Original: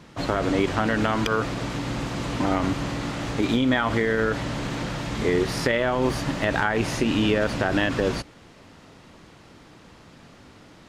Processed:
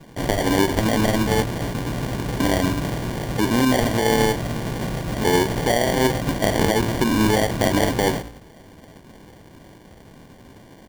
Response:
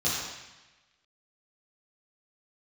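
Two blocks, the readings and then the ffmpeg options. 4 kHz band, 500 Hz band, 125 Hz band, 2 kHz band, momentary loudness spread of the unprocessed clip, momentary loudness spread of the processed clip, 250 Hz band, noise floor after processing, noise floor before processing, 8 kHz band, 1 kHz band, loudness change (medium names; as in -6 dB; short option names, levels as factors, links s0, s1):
+4.0 dB, +3.5 dB, +4.5 dB, +0.5 dB, 8 LU, 8 LU, +3.5 dB, -47 dBFS, -50 dBFS, +9.0 dB, +3.5 dB, +3.5 dB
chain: -filter_complex "[0:a]asplit=2[s0][s1];[s1]adelay=18,volume=0.2[s2];[s0][s2]amix=inputs=2:normalize=0,bandreject=f=56.87:t=h:w=4,bandreject=f=113.74:t=h:w=4,bandreject=f=170.61:t=h:w=4,bandreject=f=227.48:t=h:w=4,bandreject=f=284.35:t=h:w=4,bandreject=f=341.22:t=h:w=4,bandreject=f=398.09:t=h:w=4,bandreject=f=454.96:t=h:w=4,bandreject=f=511.83:t=h:w=4,bandreject=f=568.7:t=h:w=4,bandreject=f=625.57:t=h:w=4,bandreject=f=682.44:t=h:w=4,bandreject=f=739.31:t=h:w=4,bandreject=f=796.18:t=h:w=4,bandreject=f=853.05:t=h:w=4,bandreject=f=909.92:t=h:w=4,bandreject=f=966.79:t=h:w=4,bandreject=f=1023.66:t=h:w=4,bandreject=f=1080.53:t=h:w=4,bandreject=f=1137.4:t=h:w=4,bandreject=f=1194.27:t=h:w=4,bandreject=f=1251.14:t=h:w=4,bandreject=f=1308.01:t=h:w=4,bandreject=f=1364.88:t=h:w=4,bandreject=f=1421.75:t=h:w=4,bandreject=f=1478.62:t=h:w=4,bandreject=f=1535.49:t=h:w=4,bandreject=f=1592.36:t=h:w=4,bandreject=f=1649.23:t=h:w=4,bandreject=f=1706.1:t=h:w=4,bandreject=f=1762.97:t=h:w=4,bandreject=f=1819.84:t=h:w=4,bandreject=f=1876.71:t=h:w=4,bandreject=f=1933.58:t=h:w=4,bandreject=f=1990.45:t=h:w=4,bandreject=f=2047.32:t=h:w=4,bandreject=f=2104.19:t=h:w=4,bandreject=f=2161.06:t=h:w=4,bandreject=f=2217.93:t=h:w=4,bandreject=f=2274.8:t=h:w=4,acrusher=samples=34:mix=1:aa=0.000001,volume=1.58"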